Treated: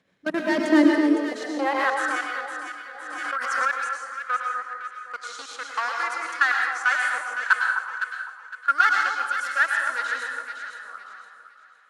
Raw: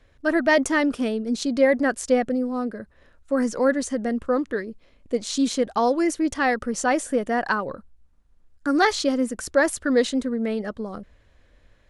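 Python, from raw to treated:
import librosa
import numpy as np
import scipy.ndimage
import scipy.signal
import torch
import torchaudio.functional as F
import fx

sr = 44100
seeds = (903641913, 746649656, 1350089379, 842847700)

y = fx.level_steps(x, sr, step_db=21)
y = fx.clip_asym(y, sr, top_db=-21.5, bottom_db=-16.0)
y = fx.low_shelf(y, sr, hz=460.0, db=-7.0)
y = fx.rev_plate(y, sr, seeds[0], rt60_s=0.72, hf_ratio=0.95, predelay_ms=90, drr_db=1.5)
y = fx.filter_sweep_highpass(y, sr, from_hz=180.0, to_hz=1400.0, start_s=0.35, end_s=2.13, q=6.1)
y = fx.high_shelf(y, sr, hz=9600.0, db=-5.0)
y = fx.echo_alternate(y, sr, ms=255, hz=1200.0, feedback_pct=55, wet_db=-3.0)
y = fx.pre_swell(y, sr, db_per_s=34.0, at=(1.66, 3.86))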